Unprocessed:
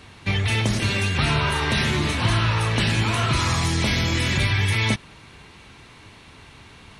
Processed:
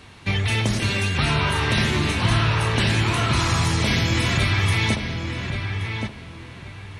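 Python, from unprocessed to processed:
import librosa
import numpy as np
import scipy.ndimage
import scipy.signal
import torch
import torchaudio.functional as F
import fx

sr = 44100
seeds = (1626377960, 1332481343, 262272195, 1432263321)

y = fx.echo_filtered(x, sr, ms=1125, feedback_pct=27, hz=2700.0, wet_db=-5.5)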